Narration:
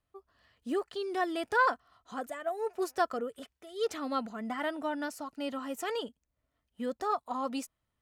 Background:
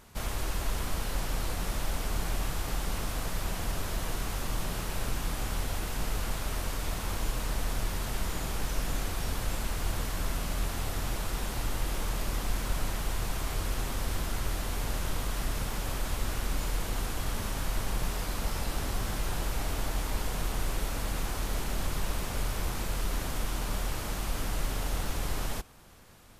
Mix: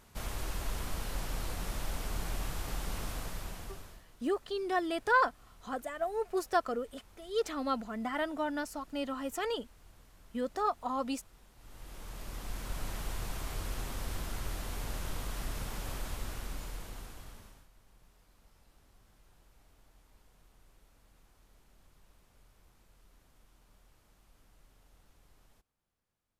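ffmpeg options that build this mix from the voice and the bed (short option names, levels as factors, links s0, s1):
-filter_complex "[0:a]adelay=3550,volume=1[s0];[1:a]volume=6.31,afade=t=out:st=3.09:d=0.95:silence=0.0794328,afade=t=in:st=11.57:d=1.42:silence=0.0891251,afade=t=out:st=15.94:d=1.74:silence=0.0501187[s1];[s0][s1]amix=inputs=2:normalize=0"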